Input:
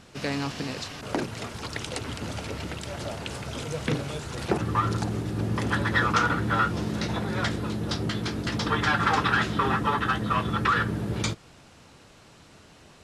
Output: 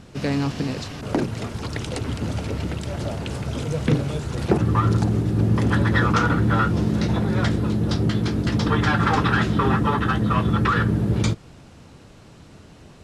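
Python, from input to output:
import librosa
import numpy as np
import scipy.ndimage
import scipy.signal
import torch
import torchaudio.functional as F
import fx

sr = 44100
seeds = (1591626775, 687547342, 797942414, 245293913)

y = fx.low_shelf(x, sr, hz=480.0, db=10.0)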